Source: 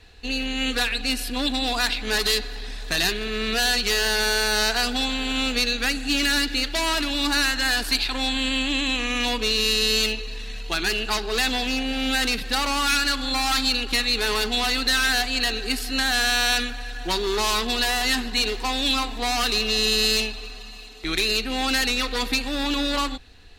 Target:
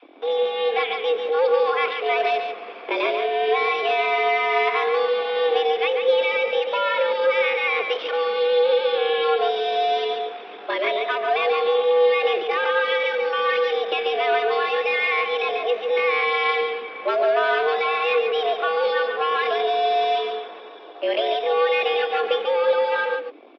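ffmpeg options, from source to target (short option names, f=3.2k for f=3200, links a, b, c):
-filter_complex "[0:a]lowshelf=f=490:g=11.5,bandreject=f=1.4k:w=13,acrossover=split=620[a][b];[a]acrusher=bits=5:mix=0:aa=0.5[c];[c][b]amix=inputs=2:normalize=0,asetrate=55563,aresample=44100,atempo=0.793701,asplit=2[d][e];[e]aecho=0:1:141:0.501[f];[d][f]amix=inputs=2:normalize=0,highpass=f=150:t=q:w=0.5412,highpass=f=150:t=q:w=1.307,lowpass=f=3k:t=q:w=0.5176,lowpass=f=3k:t=q:w=0.7071,lowpass=f=3k:t=q:w=1.932,afreqshift=160"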